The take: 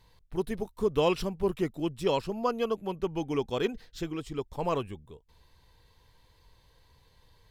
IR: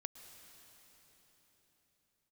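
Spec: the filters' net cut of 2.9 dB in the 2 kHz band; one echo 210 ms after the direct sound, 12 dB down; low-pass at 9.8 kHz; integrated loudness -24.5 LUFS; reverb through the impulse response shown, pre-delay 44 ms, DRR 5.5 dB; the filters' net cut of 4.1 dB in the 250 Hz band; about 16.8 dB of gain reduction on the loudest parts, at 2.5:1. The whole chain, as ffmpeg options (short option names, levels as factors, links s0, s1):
-filter_complex "[0:a]lowpass=9800,equalizer=f=250:t=o:g=-6.5,equalizer=f=2000:t=o:g=-4,acompressor=threshold=0.00316:ratio=2.5,aecho=1:1:210:0.251,asplit=2[s0][s1];[1:a]atrim=start_sample=2205,adelay=44[s2];[s1][s2]afir=irnorm=-1:irlink=0,volume=0.794[s3];[s0][s3]amix=inputs=2:normalize=0,volume=13.3"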